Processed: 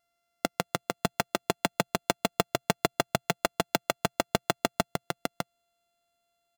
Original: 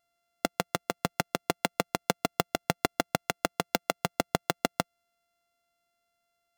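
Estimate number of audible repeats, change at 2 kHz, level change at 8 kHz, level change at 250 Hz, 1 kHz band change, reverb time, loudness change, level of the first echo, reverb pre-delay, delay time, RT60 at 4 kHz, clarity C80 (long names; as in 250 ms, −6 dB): 1, +1.0 dB, +1.5 dB, +1.0 dB, +1.0 dB, no reverb audible, +0.5 dB, −4.5 dB, no reverb audible, 604 ms, no reverb audible, no reverb audible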